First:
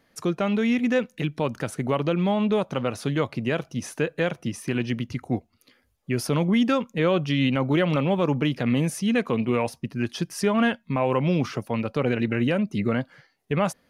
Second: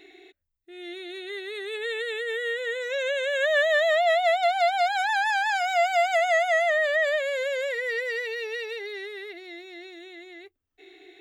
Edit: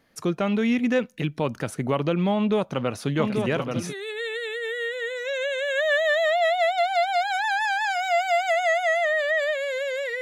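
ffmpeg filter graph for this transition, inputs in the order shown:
-filter_complex "[0:a]asplit=3[a][b][c];[a]afade=t=out:st=3.18:d=0.02[d];[b]aecho=1:1:836|1672|2508|3344|4180|5016:0.596|0.28|0.132|0.0618|0.0291|0.0137,afade=t=in:st=3.18:d=0.02,afade=t=out:st=3.94:d=0.02[e];[c]afade=t=in:st=3.94:d=0.02[f];[d][e][f]amix=inputs=3:normalize=0,apad=whole_dur=10.21,atrim=end=10.21,atrim=end=3.94,asetpts=PTS-STARTPTS[g];[1:a]atrim=start=1.51:end=7.86,asetpts=PTS-STARTPTS[h];[g][h]acrossfade=d=0.08:c1=tri:c2=tri"

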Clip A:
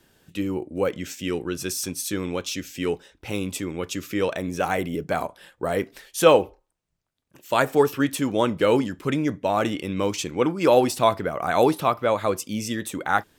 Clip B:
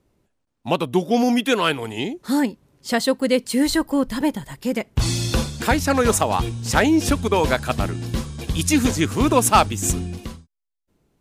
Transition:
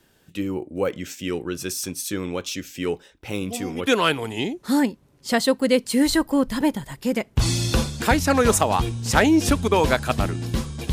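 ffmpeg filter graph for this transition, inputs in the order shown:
-filter_complex "[1:a]asplit=2[a][b];[0:a]apad=whole_dur=10.92,atrim=end=10.92,atrim=end=3.872[c];[b]atrim=start=1.468:end=8.52[d];[a]atrim=start=1.01:end=1.47,asetpts=PTS-STARTPTS,volume=-15.5dB,afade=t=in:d=0.004:c=hsin,afade=t=out:st=0.456:d=0.004:c=hsin,adelay=150381S[e];[c][d]acrossfade=d=0.004:c1=hsin:c2=hsin[f];[f][e]amix=inputs=2:normalize=0"

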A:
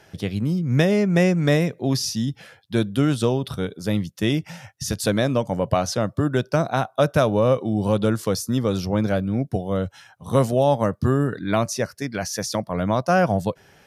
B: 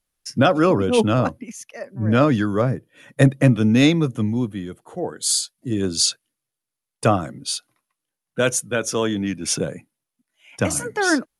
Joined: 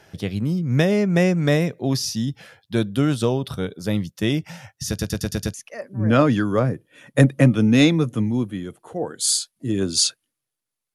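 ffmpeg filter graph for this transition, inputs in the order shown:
-filter_complex "[0:a]apad=whole_dur=10.94,atrim=end=10.94,asplit=6[a][b][c][d][e][f];[a]atrim=end=4.992[g];[b]atrim=start=4.878:end=4.992[h];[c]atrim=start=4.878:end=4.992[i];[d]atrim=start=4.878:end=4.992[j];[e]atrim=start=4.878:end=4.992[k];[f]atrim=start=4.878:end=4.992[l];[1:a]atrim=start=1.558:end=6.96[m];[g][h]acrossfade=d=0.004:c1=hsin:c2=hsin[n];[n][i]acrossfade=d=0.004:c1=hsin:c2=hsin[o];[o][j]acrossfade=d=0.004:c1=hsin:c2=hsin[p];[p][k]acrossfade=d=0.004:c1=hsin:c2=hsin[q];[q][l]acrossfade=d=0.004:c1=hsin:c2=hsin[r];[r][m]acrossfade=d=0.004:c1=hsin:c2=hsin"

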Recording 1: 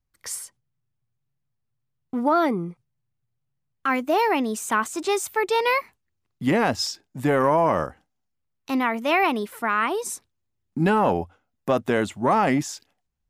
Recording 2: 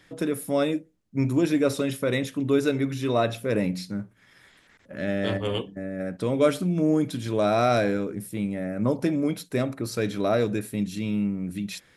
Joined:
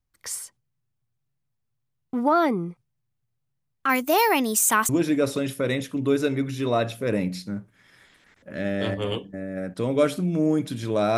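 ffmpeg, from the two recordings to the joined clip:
-filter_complex "[0:a]asettb=1/sr,asplit=3[a][b][c];[a]atrim=end=3.894[d];[b]atrim=start=3.89:end=4.89,asetpts=PTS-STARTPTS,afade=t=in:d=0.004:c=qsin,afade=t=out:st=0.996:d=0.004:c=qsin,aemphasis=mode=production:type=75kf[e];[c]atrim=start=4.886[f];[d][e]acrossfade=d=0.004:c1=hsin:c2=qsin[g];[g][f]acrossfade=d=0.004:c1=qsin:c2=hsin,apad=whole_dur=11.17,atrim=end=11.17,atrim=end=4.892[h];[1:a]atrim=start=1.318:end=7.6[i];[h][i]acrossfade=d=0.004:c1=hsin:c2=hsin"

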